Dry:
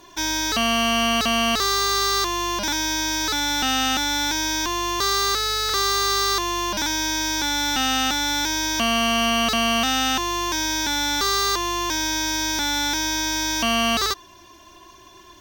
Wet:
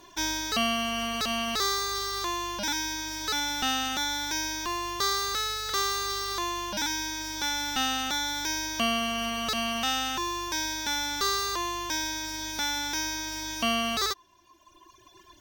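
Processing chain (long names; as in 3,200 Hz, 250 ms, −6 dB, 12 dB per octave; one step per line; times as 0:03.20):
reverb reduction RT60 1.8 s
level −4 dB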